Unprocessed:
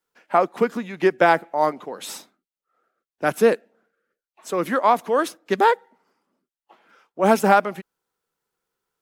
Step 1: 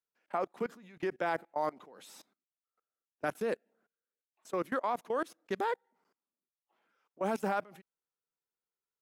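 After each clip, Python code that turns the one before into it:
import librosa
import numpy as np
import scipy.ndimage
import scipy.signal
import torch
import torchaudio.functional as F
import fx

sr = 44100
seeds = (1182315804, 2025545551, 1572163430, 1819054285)

y = fx.level_steps(x, sr, step_db=23)
y = y * 10.0 ** (-8.0 / 20.0)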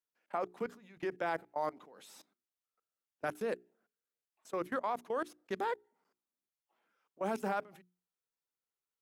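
y = fx.hum_notches(x, sr, base_hz=60, count=7)
y = y * 10.0 ** (-2.5 / 20.0)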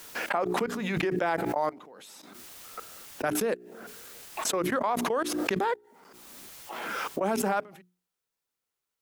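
y = fx.pre_swell(x, sr, db_per_s=24.0)
y = y * 10.0 ** (7.0 / 20.0)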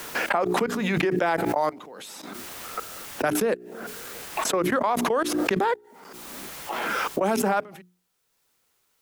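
y = fx.band_squash(x, sr, depth_pct=40)
y = y * 10.0 ** (4.5 / 20.0)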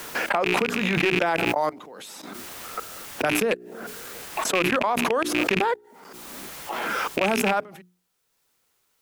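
y = fx.rattle_buzz(x, sr, strikes_db=-32.0, level_db=-12.0)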